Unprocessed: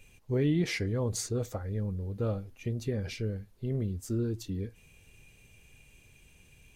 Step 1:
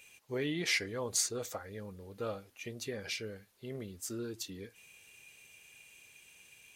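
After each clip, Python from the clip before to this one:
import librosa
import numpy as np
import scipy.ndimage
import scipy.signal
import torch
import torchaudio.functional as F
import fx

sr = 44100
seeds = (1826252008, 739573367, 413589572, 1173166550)

y = fx.highpass(x, sr, hz=1300.0, slope=6)
y = y * librosa.db_to_amplitude(5.0)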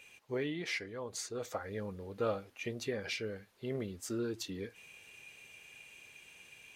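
y = fx.low_shelf(x, sr, hz=190.0, db=-4.0)
y = fx.rider(y, sr, range_db=5, speed_s=0.5)
y = fx.high_shelf(y, sr, hz=5000.0, db=-12.0)
y = y * librosa.db_to_amplitude(1.0)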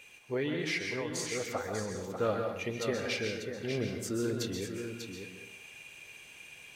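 y = x + 10.0 ** (-7.5 / 20.0) * np.pad(x, (int(593 * sr / 1000.0), 0))[:len(x)]
y = fx.rev_plate(y, sr, seeds[0], rt60_s=0.66, hf_ratio=0.75, predelay_ms=115, drr_db=3.5)
y = y * librosa.db_to_amplitude(3.0)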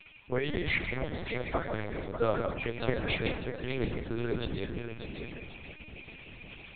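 y = fx.echo_thinned(x, sr, ms=1079, feedback_pct=50, hz=200.0, wet_db=-15)
y = fx.lpc_vocoder(y, sr, seeds[1], excitation='pitch_kept', order=8)
y = fx.hpss(y, sr, part='harmonic', gain_db=-9)
y = y * librosa.db_to_amplitude(6.0)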